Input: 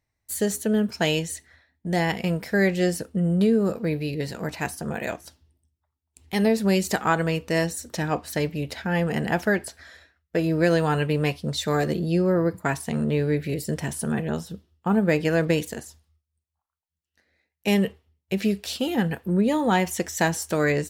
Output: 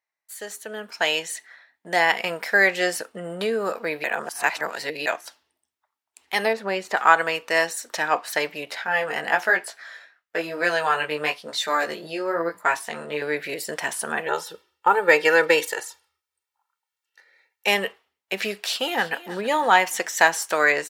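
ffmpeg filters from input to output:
-filter_complex "[0:a]asettb=1/sr,asplit=3[s0][s1][s2];[s0]atrim=end=6.534[s3];[s1]atrim=start=6.53:end=6.97,asetpts=PTS-STARTPTS,afade=t=in:d=0.004:c=qsin,afade=t=out:st=0.436:d=0.004:c=qsin,lowpass=f=1400:p=1[s4];[s2]atrim=start=6.966[s5];[s3][s4]acrossfade=d=0.004:c1=hsin:c2=qsin[s6];[s6][s5]acrossfade=d=0.004:c1=qsin:c2=hsin,asettb=1/sr,asplit=3[s7][s8][s9];[s7]atrim=end=8.654[s10];[s8]atrim=start=8.65:end=13.22,asetpts=PTS-STARTPTS,afade=t=in:d=0.004:c=qsin,afade=t=out:st=4.566:d=0.004:c=qsin,flanger=delay=16.5:depth=3.4:speed=1[s11];[s9]atrim=start=13.216[s12];[s10][s11]acrossfade=d=0.004:c1=hsin:c2=qsin[s13];[s13][s12]acrossfade=d=0.004:c1=qsin:c2=hsin,asettb=1/sr,asplit=3[s14][s15][s16];[s14]atrim=end=14.264[s17];[s15]atrim=start=14.26:end=17.67,asetpts=PTS-STARTPTS,afade=t=in:d=0.004:c=qsin,afade=t=out:st=3.406:d=0.004:c=qsin,aecho=1:1:2.2:0.98,atrim=end_sample=150381[s18];[s16]atrim=start=17.666[s19];[s17][s18]acrossfade=d=0.004:c1=hsin:c2=qsin[s20];[s20][s19]acrossfade=d=0.004:c1=qsin:c2=hsin,asplit=2[s21][s22];[s22]afade=t=in:st=18.61:d=0.01,afade=t=out:st=19.24:d=0.01,aecho=0:1:320|640|960|1280:0.158489|0.0792447|0.0396223|0.0198112[s23];[s21][s23]amix=inputs=2:normalize=0,asplit=3[s24][s25][s26];[s24]atrim=end=4.042[s27];[s25]atrim=start=4.038:end=5.062,asetpts=PTS-STARTPTS,areverse[s28];[s26]atrim=start=5.058[s29];[s27][s28]acrossfade=d=0.004:c1=hsin:c2=hsin[s30];[s30][s29]acrossfade=d=0.004:c1=hsin:c2=hsin,highpass=1000,highshelf=f=2700:g=-11,dynaudnorm=f=300:g=7:m=3.98,volume=1.19"

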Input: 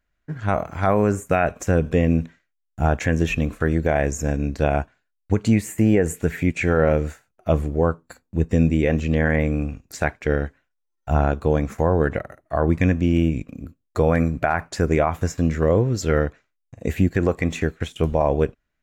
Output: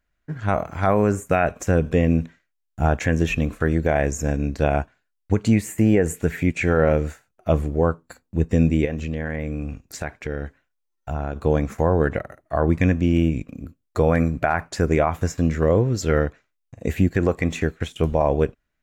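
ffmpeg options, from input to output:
-filter_complex "[0:a]asettb=1/sr,asplit=3[s0][s1][s2];[s0]atrim=end=8.854[s3];[s1]atrim=start=8.85:end=11.36,asetpts=PTS-STARTPTS,afade=t=in:d=0.004:c=qsin,afade=t=out:st=2.506:d=0.004:c=qsin,acompressor=threshold=0.0562:ratio=3:attack=3.2:release=140:knee=1:detection=peak[s4];[s2]atrim=start=11.356[s5];[s3][s4]acrossfade=d=0.004:c1=hsin:c2=qsin[s6];[s6][s5]acrossfade=d=0.004:c1=qsin:c2=hsin"

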